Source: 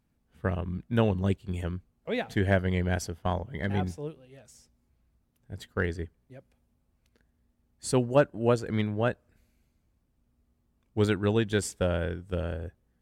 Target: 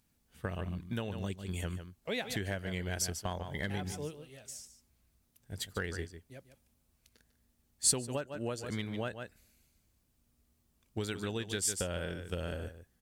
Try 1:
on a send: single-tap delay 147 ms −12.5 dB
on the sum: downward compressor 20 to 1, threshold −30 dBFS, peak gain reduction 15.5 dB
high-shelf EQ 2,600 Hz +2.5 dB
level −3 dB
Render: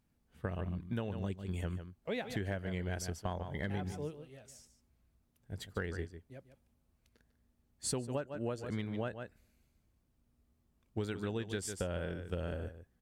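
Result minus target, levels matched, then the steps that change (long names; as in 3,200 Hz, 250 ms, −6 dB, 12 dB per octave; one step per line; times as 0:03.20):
4,000 Hz band −5.5 dB
change: high-shelf EQ 2,600 Hz +14.5 dB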